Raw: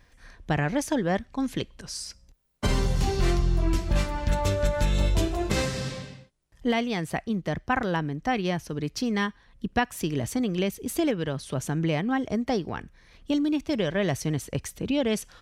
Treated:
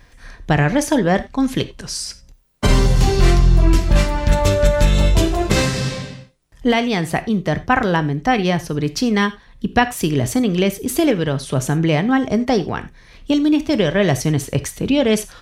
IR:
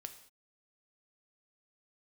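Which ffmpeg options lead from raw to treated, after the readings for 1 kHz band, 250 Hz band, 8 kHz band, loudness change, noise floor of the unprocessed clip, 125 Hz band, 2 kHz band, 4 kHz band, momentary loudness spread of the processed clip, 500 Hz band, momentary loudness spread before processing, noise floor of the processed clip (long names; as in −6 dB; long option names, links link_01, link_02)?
+9.5 dB, +9.5 dB, +9.5 dB, +10.0 dB, −59 dBFS, +10.0 dB, +9.5 dB, +9.5 dB, 8 LU, +9.5 dB, 7 LU, −48 dBFS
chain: -filter_complex "[0:a]asplit=2[link_01][link_02];[1:a]atrim=start_sample=2205,afade=type=out:start_time=0.15:duration=0.01,atrim=end_sample=7056[link_03];[link_02][link_03]afir=irnorm=-1:irlink=0,volume=11dB[link_04];[link_01][link_04]amix=inputs=2:normalize=0"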